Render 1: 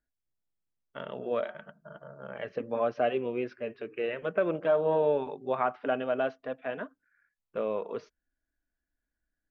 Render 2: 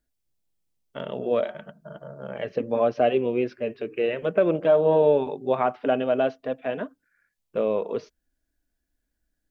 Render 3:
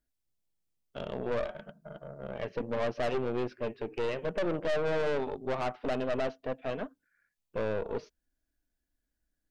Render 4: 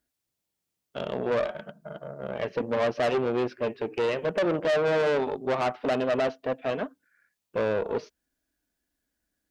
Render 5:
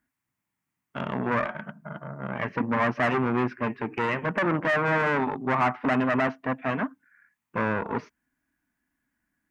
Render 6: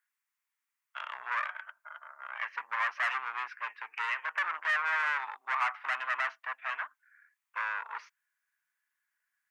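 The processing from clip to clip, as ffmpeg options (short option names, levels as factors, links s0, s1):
-af "equalizer=f=1400:w=0.97:g=-7.5,volume=2.66"
-af "aeval=exprs='(tanh(20*val(0)+0.65)-tanh(0.65))/20':c=same,volume=0.841"
-af "highpass=f=150:p=1,volume=2.11"
-af "equalizer=f=125:t=o:w=1:g=9,equalizer=f=250:t=o:w=1:g=10,equalizer=f=500:t=o:w=1:g=-8,equalizer=f=1000:t=o:w=1:g=11,equalizer=f=2000:t=o:w=1:g=11,equalizer=f=4000:t=o:w=1:g=-7,volume=0.668"
-af "highpass=f=1100:w=0.5412,highpass=f=1100:w=1.3066,volume=0.794"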